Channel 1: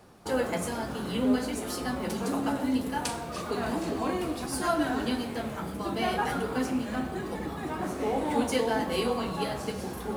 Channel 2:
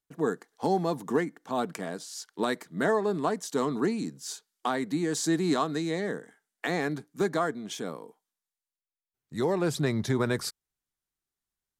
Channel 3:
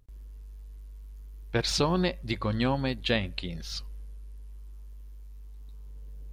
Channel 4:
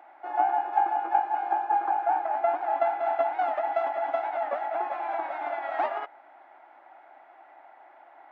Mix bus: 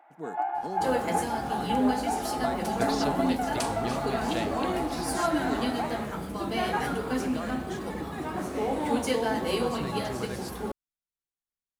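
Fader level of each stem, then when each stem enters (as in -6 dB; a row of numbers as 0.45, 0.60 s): 0.0, -10.5, -8.0, -5.5 dB; 0.55, 0.00, 1.25, 0.00 s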